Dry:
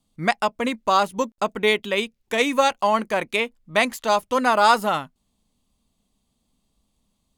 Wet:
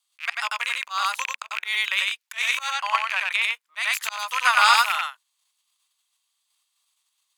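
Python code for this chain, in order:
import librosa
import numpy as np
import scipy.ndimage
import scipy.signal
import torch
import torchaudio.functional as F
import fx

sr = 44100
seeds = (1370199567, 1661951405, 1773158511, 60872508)

p1 = fx.rattle_buzz(x, sr, strikes_db=-34.0, level_db=-13.0)
p2 = p1 + fx.echo_single(p1, sr, ms=92, db=-3.0, dry=0)
p3 = fx.auto_swell(p2, sr, attack_ms=175.0)
p4 = fx.high_shelf(p3, sr, hz=6400.0, db=-9.0, at=(2.7, 3.42))
p5 = fx.level_steps(p4, sr, step_db=17)
p6 = p4 + (p5 * 10.0 ** (-1.0 / 20.0))
y = scipy.signal.sosfilt(scipy.signal.butter(4, 1200.0, 'highpass', fs=sr, output='sos'), p6)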